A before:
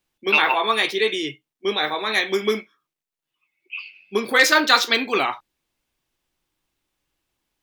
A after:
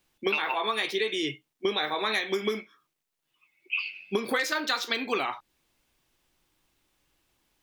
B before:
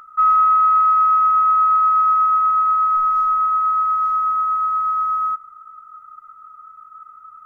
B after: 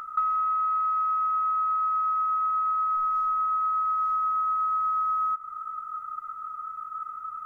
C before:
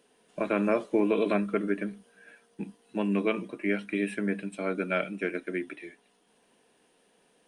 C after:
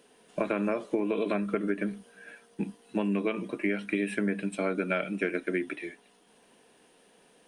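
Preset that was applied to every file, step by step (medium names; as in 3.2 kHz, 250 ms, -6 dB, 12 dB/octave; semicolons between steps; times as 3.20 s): compression 20:1, threshold -29 dBFS; trim +5 dB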